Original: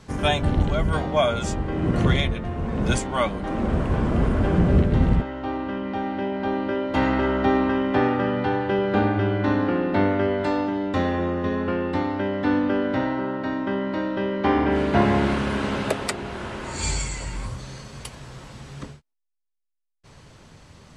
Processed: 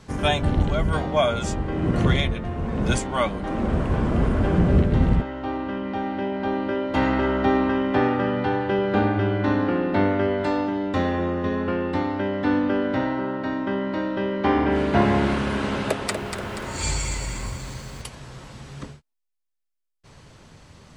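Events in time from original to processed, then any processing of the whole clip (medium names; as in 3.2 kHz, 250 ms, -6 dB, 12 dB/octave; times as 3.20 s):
15.86–18.02 s: bit-crushed delay 240 ms, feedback 55%, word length 8-bit, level -7 dB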